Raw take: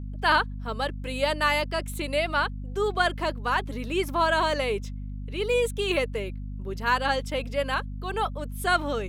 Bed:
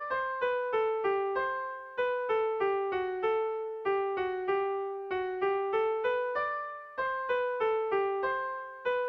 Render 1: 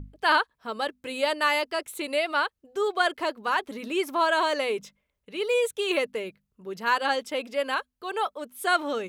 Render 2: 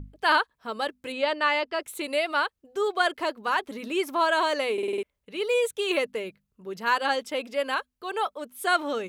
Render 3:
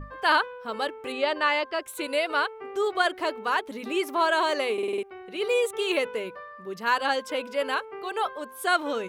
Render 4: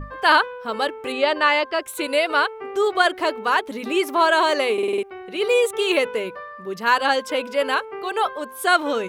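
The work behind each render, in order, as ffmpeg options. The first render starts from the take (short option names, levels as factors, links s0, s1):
-af "bandreject=f=50:t=h:w=6,bandreject=f=100:t=h:w=6,bandreject=f=150:t=h:w=6,bandreject=f=200:t=h:w=6,bandreject=f=250:t=h:w=6"
-filter_complex "[0:a]asettb=1/sr,asplit=3[s0][s1][s2];[s0]atrim=end=1.124[s3];[s1]atrim=start=1.12:end=1.81,asetpts=PTS-STARTPTS,afade=t=in:d=0.004:c=qsin,afade=t=out:st=0.686:d=0.004:c=qsin,lowpass=4200[s4];[s2]atrim=start=1.806[s5];[s3][s4]acrossfade=d=0.004:c1=hsin:c2=qsin[s6];[s6][s5]acrossfade=d=0.004:c1=qsin:c2=hsin,asplit=7[s7][s8][s9][s10][s11][s12][s13];[s7]atrim=end=4.782[s14];[s8]atrim=start=4.728:end=4.782[s15];[s9]atrim=start=4.728:end=4.782[s16];[s10]atrim=start=4.728:end=4.782[s17];[s11]atrim=start=4.728:end=4.782[s18];[s12]atrim=start=4.728:end=4.782[s19];[s13]atrim=start=5.028[s20];[s14][s15]acrossfade=d=0.004:c1=hsin:c2=hsin[s21];[s21][s16]acrossfade=d=0.004:c1=hsin:c2=hsin[s22];[s22][s17]acrossfade=d=0.004:c1=hsin:c2=hsin[s23];[s23][s18]acrossfade=d=0.004:c1=hsin:c2=hsin[s24];[s24][s19]acrossfade=d=0.004:c1=hsin:c2=hsin[s25];[s25][s20]acrossfade=d=0.004:c1=hsin:c2=hsin"
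-filter_complex "[1:a]volume=0.299[s0];[0:a][s0]amix=inputs=2:normalize=0"
-af "volume=2"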